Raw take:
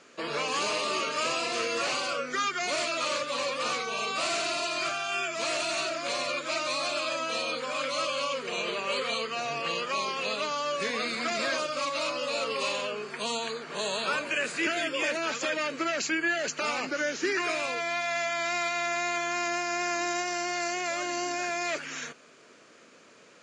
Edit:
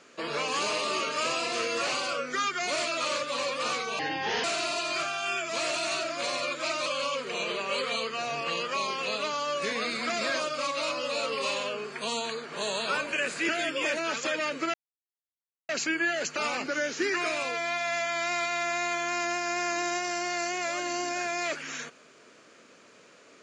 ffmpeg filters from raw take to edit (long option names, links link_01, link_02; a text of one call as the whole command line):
ffmpeg -i in.wav -filter_complex "[0:a]asplit=5[link_01][link_02][link_03][link_04][link_05];[link_01]atrim=end=3.994[link_06];[link_02]atrim=start=3.99:end=4.3,asetpts=PTS-STARTPTS,asetrate=30429,aresample=44100,atrim=end_sample=19813,asetpts=PTS-STARTPTS[link_07];[link_03]atrim=start=4.296:end=6.722[link_08];[link_04]atrim=start=8.038:end=15.92,asetpts=PTS-STARTPTS,afade=type=out:start_time=7.878:duration=0.004:curve=hsin,apad=pad_dur=0.95[link_09];[link_05]atrim=start=15.92,asetpts=PTS-STARTPTS,afade=type=in:duration=0.004:curve=hsin[link_10];[link_06][link_07]acrossfade=duration=0.004:curve1=hsin:curve2=hsin[link_11];[link_11][link_08]acrossfade=duration=0.004:curve1=hsin:curve2=hsin[link_12];[link_09][link_10]concat=n=2:v=0:a=1[link_13];[link_12][link_13]acrossfade=duration=0.004:curve1=hsin:curve2=hsin" out.wav